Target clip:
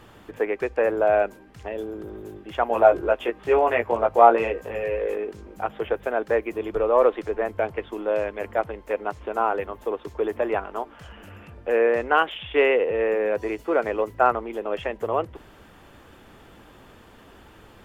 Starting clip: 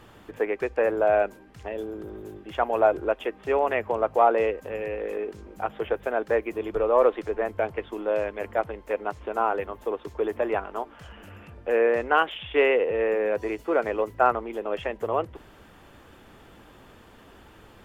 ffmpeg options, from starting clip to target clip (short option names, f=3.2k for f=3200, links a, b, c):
-filter_complex "[0:a]asettb=1/sr,asplit=3[a][b][c];[a]atrim=end=2.694[d];[b]atrim=start=2.69:end=5.15,asetpts=PTS-STARTPTS,afade=t=in:d=0.004:c=qsin,afade=t=out:st=2.456:d=0.004:c=qsin,asplit=2[e][f];[f]adelay=17,volume=-2.5dB[g];[e][g]amix=inputs=2:normalize=0,atrim=end_sample=108486[h];[c]atrim=start=5.146[i];[d][h]acrossfade=d=0.004:c1=hsin:c2=qsin[j];[j][i]acrossfade=d=0.004:c1=qsin:c2=hsin,volume=1.5dB"